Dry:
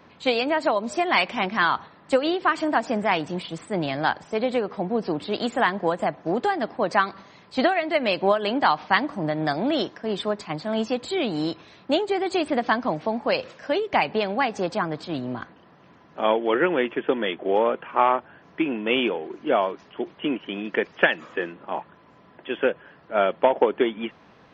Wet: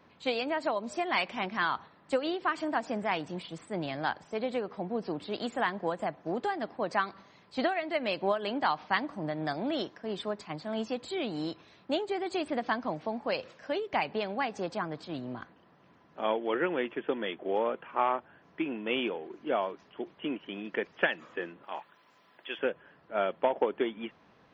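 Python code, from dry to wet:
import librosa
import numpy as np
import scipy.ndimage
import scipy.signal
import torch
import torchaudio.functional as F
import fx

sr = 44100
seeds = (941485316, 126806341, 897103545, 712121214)

y = fx.tilt_eq(x, sr, slope=4.0, at=(21.63, 22.59))
y = y * librosa.db_to_amplitude(-8.5)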